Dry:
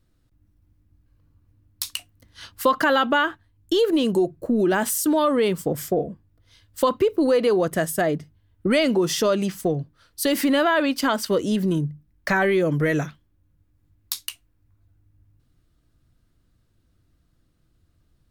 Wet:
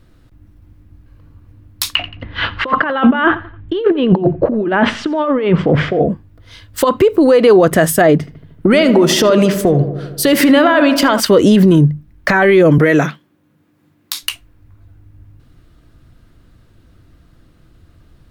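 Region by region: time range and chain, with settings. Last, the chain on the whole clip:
0:01.95–0:06.01: low-pass filter 3,000 Hz 24 dB per octave + compressor whose output falls as the input rises −27 dBFS, ratio −0.5 + repeating echo 87 ms, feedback 35%, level −21 dB
0:06.84–0:07.44: parametric band 7,800 Hz +5 dB 0.32 octaves + downward compressor 2 to 1, threshold −32 dBFS
0:08.18–0:11.20: downward compressor, threshold −25 dBFS + feedback echo with a low-pass in the loop 77 ms, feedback 71%, low-pass 1,800 Hz, level −10 dB
0:12.78–0:14.23: high-pass filter 160 Hz 24 dB per octave + downward compressor 3 to 1, threshold −26 dBFS
whole clip: bass and treble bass −2 dB, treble −8 dB; boost into a limiter +20 dB; level −1 dB

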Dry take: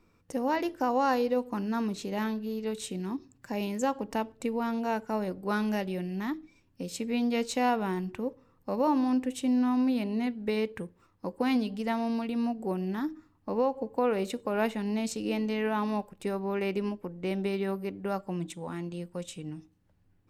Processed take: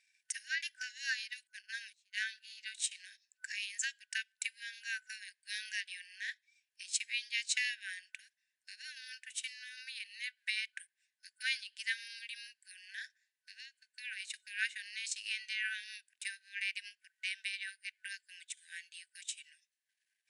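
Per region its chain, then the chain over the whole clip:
0:01.47–0:02.22: noise gate −32 dBFS, range −27 dB + upward compression, threshold −51 dBFS
whole clip: transient designer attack +6 dB, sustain −8 dB; brick-wall band-pass 1,500–11,000 Hz; high-shelf EQ 7,300 Hz +6.5 dB; level +2 dB

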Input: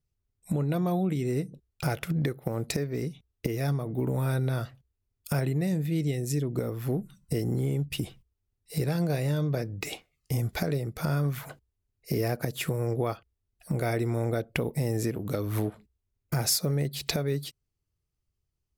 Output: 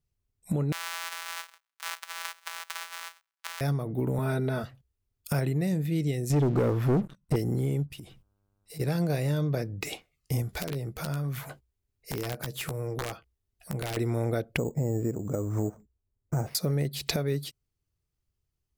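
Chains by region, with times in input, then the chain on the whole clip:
0:00.72–0:03.61: samples sorted by size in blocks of 256 samples + high-pass filter 1,100 Hz 24 dB per octave + frequency shifter −43 Hz
0:04.18–0:04.64: high-shelf EQ 3,500 Hz −8 dB + comb filter 4.7 ms, depth 98%
0:06.30–0:07.36: low-pass filter 1,500 Hz 6 dB per octave + low-shelf EQ 340 Hz −3.5 dB + leveller curve on the samples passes 3
0:07.86–0:08.79: downward compressor 4 to 1, threshold −42 dBFS + hum with harmonics 100 Hz, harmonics 16, −77 dBFS −6 dB per octave
0:10.42–0:13.97: downward compressor 3 to 1, threshold −31 dBFS + wrap-around overflow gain 25 dB + double-tracking delay 15 ms −9.5 dB
0:14.57–0:16.55: low-pass filter 1,000 Hz + bad sample-rate conversion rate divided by 6×, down none, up hold
whole clip: no processing

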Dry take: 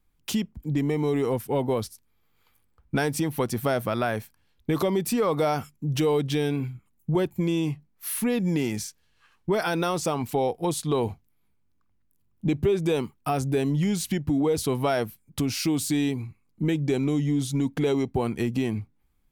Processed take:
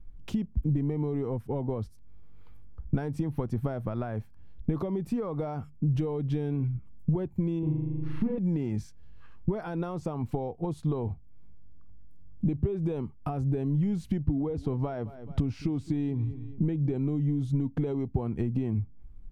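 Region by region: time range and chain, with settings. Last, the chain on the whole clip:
0:07.59–0:08.38: head-to-tape spacing loss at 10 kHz 35 dB + flutter between parallel walls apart 6.7 metres, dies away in 1 s
0:14.25–0:16.96: parametric band 13,000 Hz −13.5 dB 0.93 octaves + repeating echo 215 ms, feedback 27%, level −21 dB
whole clip: dynamic equaliser 1,000 Hz, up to +4 dB, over −39 dBFS, Q 0.91; downward compressor 6 to 1, threshold −39 dBFS; spectral tilt −4.5 dB per octave; level +2 dB

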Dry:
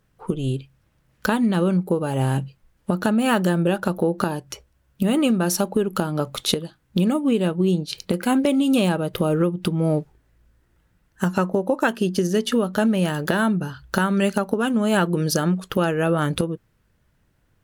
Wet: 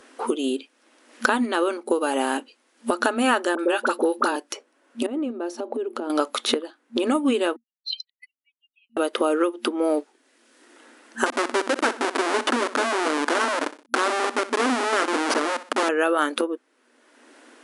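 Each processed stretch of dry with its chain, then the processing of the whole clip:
0:03.55–0:04.36: notch filter 690 Hz, Q 7.3 + all-pass dispersion highs, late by 40 ms, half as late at 1,200 Hz
0:05.06–0:06.10: downward compressor 16 to 1, threshold −28 dBFS + resonant band-pass 320 Hz, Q 0.62 + bad sample-rate conversion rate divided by 2×, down none, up zero stuff
0:07.56–0:08.97: expanding power law on the bin magnitudes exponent 3.7 + linear-phase brick-wall high-pass 1,900 Hz
0:11.26–0:15.89: comparator with hysteresis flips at −23.5 dBFS + repeating echo 62 ms, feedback 36%, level −16 dB
whole clip: brick-wall band-pass 230–11,000 Hz; dynamic equaliser 1,300 Hz, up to +6 dB, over −39 dBFS, Q 0.98; multiband upward and downward compressor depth 70%

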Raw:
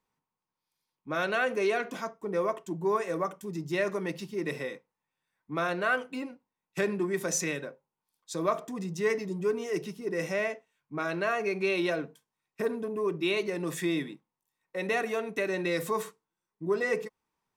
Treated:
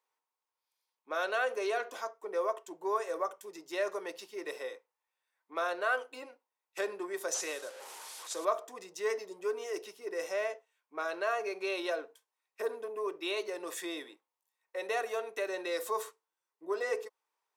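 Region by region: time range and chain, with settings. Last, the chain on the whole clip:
0:07.34–0:08.45: linear delta modulator 64 kbit/s, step −40.5 dBFS + dynamic equaliser 7,500 Hz, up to +5 dB, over −52 dBFS, Q 0.8 + upward compression, threshold −42 dBFS
whole clip: high-pass filter 440 Hz 24 dB per octave; dynamic equaliser 2,200 Hz, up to −7 dB, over −49 dBFS, Q 2; level −1.5 dB

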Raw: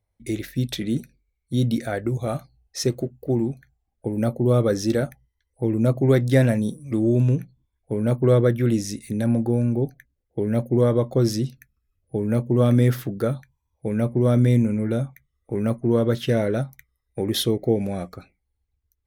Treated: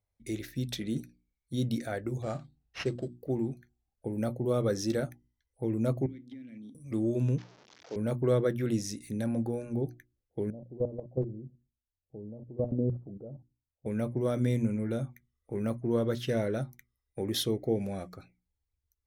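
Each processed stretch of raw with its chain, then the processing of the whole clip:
0:02.22–0:03.17: mains-hum notches 50/100/150/200/250 Hz + sample-rate reduction 8,100 Hz + high-frequency loss of the air 100 metres
0:06.06–0:06.75: formant filter i + downward compressor 12 to 1, threshold −34 dBFS
0:07.38–0:07.96: linear delta modulator 32 kbit/s, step −36.5 dBFS + high-pass filter 360 Hz
0:10.50–0:13.86: Butterworth low-pass 760 Hz + output level in coarse steps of 17 dB
whole clip: parametric band 5,800 Hz +3 dB 0.78 octaves; mains-hum notches 60/120/180/240/300/360 Hz; level −8 dB

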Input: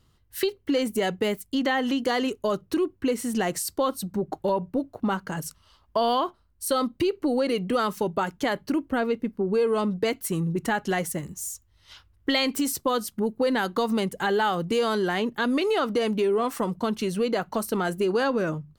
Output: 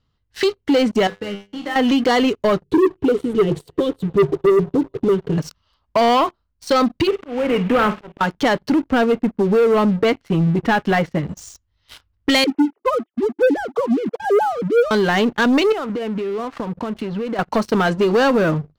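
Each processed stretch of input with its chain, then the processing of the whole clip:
0:01.07–0:01.76: running median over 9 samples + tuned comb filter 100 Hz, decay 0.58 s, mix 90%
0:02.63–0:05.38: drawn EQ curve 100 Hz 0 dB, 150 Hz +10 dB, 220 Hz −9 dB, 410 Hz +14 dB, 650 Hz −22 dB, 2,000 Hz −20 dB, 3,500 Hz −3 dB, 5,200 Hz −27 dB, 15,000 Hz +14 dB + delay with a band-pass on its return 97 ms, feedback 83%, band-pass 1,300 Hz, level −24 dB
0:07.07–0:08.21: variable-slope delta modulation 16 kbit/s + volume swells 381 ms + flutter between parallel walls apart 8.8 metres, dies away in 0.24 s
0:09.05–0:11.29: low-pass filter 3,100 Hz + one half of a high-frequency compander decoder only
0:12.44–0:14.91: three sine waves on the formant tracks + Bessel low-pass filter 820 Hz
0:15.72–0:17.39: downward compressor, threshold −32 dBFS + high-frequency loss of the air 360 metres
whole clip: low-pass filter 5,400 Hz 24 dB per octave; notch filter 360 Hz, Q 12; leveller curve on the samples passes 3

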